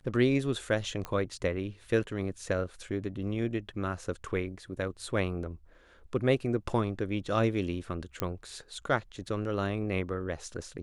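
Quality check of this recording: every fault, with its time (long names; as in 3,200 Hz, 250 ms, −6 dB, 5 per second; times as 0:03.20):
0:01.05: click −21 dBFS
0:08.20: click −14 dBFS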